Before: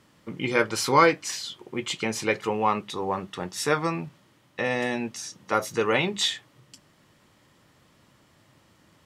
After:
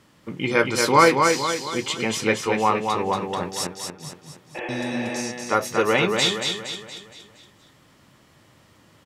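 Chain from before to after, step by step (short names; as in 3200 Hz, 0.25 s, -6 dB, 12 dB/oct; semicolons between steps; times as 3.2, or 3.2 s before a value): 3.62–4.69 flipped gate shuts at -21 dBFS, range -31 dB; feedback echo 0.233 s, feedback 47%, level -4.5 dB; 4.58–5.15 spectral repair 280–3400 Hz after; gain +3 dB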